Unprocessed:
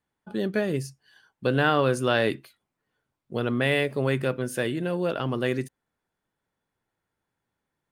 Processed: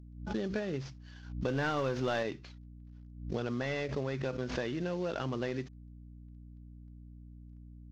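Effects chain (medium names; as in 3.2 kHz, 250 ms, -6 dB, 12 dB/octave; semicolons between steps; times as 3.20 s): CVSD coder 32 kbps; hum 60 Hz, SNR 20 dB; compression, threshold -30 dBFS, peak gain reduction 11.5 dB; 1.48–2.23 s: waveshaping leveller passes 1; swell ahead of each attack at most 82 dB/s; trim -1.5 dB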